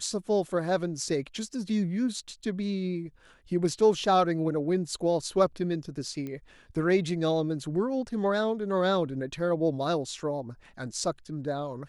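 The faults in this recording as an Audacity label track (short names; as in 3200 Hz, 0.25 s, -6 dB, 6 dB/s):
6.270000	6.270000	pop -25 dBFS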